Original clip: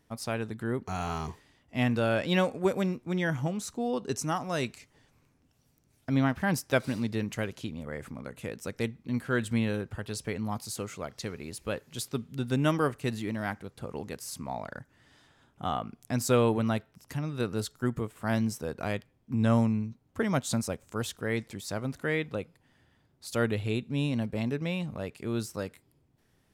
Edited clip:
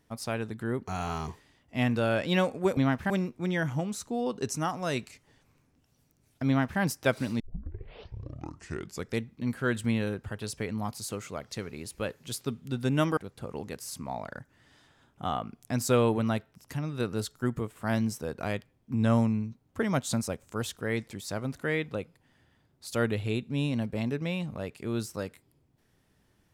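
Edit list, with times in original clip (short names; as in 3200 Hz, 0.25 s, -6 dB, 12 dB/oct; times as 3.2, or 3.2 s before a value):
6.14–6.47 copy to 2.77
7.07 tape start 1.78 s
12.84–13.57 cut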